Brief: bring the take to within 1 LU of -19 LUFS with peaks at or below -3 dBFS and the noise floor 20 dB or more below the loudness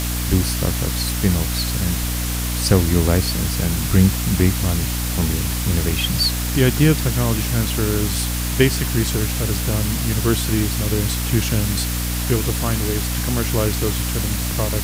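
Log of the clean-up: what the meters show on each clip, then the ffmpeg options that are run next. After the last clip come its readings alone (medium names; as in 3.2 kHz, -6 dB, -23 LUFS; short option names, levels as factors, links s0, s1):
hum 60 Hz; highest harmonic 300 Hz; hum level -21 dBFS; noise floor -23 dBFS; noise floor target -40 dBFS; loudness -19.5 LUFS; peak level -2.0 dBFS; loudness target -19.0 LUFS
-> -af "bandreject=f=60:t=h:w=4,bandreject=f=120:t=h:w=4,bandreject=f=180:t=h:w=4,bandreject=f=240:t=h:w=4,bandreject=f=300:t=h:w=4"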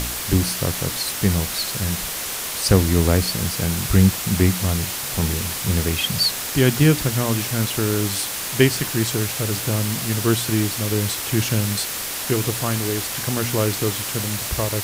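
hum not found; noise floor -28 dBFS; noise floor target -41 dBFS
-> -af "afftdn=nr=13:nf=-28"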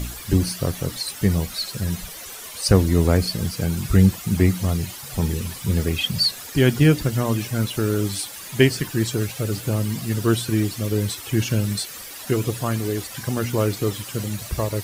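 noise floor -37 dBFS; noise floor target -43 dBFS
-> -af "afftdn=nr=6:nf=-37"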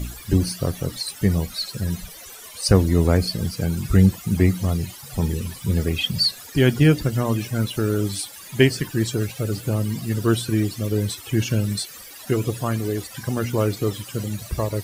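noise floor -41 dBFS; noise floor target -43 dBFS
-> -af "afftdn=nr=6:nf=-41"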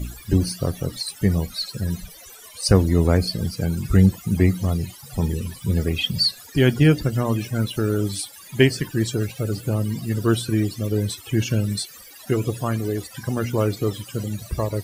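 noise floor -44 dBFS; loudness -22.5 LUFS; peak level -2.0 dBFS; loudness target -19.0 LUFS
-> -af "volume=1.5,alimiter=limit=0.708:level=0:latency=1"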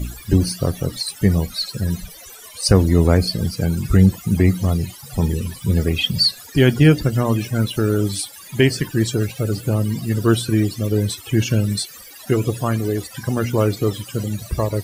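loudness -19.5 LUFS; peak level -3.0 dBFS; noise floor -40 dBFS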